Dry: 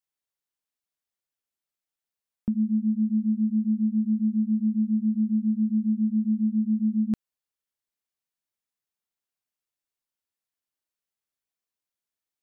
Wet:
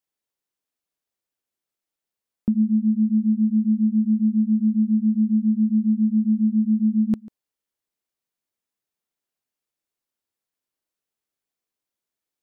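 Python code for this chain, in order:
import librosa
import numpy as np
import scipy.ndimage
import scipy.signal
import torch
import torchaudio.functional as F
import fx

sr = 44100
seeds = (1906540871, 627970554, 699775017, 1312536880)

y = fx.peak_eq(x, sr, hz=350.0, db=5.5, octaves=2.0)
y = y + 10.0 ** (-21.5 / 20.0) * np.pad(y, (int(143 * sr / 1000.0), 0))[:len(y)]
y = y * librosa.db_to_amplitude(1.5)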